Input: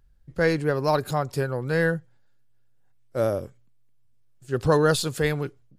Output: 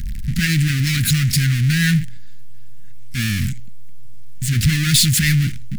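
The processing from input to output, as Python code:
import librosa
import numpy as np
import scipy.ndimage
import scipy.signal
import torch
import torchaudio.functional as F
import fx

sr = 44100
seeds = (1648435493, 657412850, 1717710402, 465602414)

y = fx.power_curve(x, sr, exponent=0.35)
y = scipy.signal.sosfilt(scipy.signal.ellip(3, 1.0, 50, [220.0, 1900.0], 'bandstop', fs=sr, output='sos'), y)
y = y * 10.0 ** (3.5 / 20.0)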